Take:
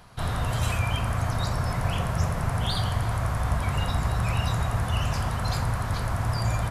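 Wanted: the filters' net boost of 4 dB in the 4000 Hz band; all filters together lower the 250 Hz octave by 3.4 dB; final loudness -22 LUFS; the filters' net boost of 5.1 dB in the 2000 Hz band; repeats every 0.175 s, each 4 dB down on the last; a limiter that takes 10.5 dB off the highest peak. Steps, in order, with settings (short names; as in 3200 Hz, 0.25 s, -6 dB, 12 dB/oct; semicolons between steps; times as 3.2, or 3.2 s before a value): bell 250 Hz -6.5 dB; bell 2000 Hz +6 dB; bell 4000 Hz +3 dB; limiter -23.5 dBFS; feedback echo 0.175 s, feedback 63%, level -4 dB; gain +7 dB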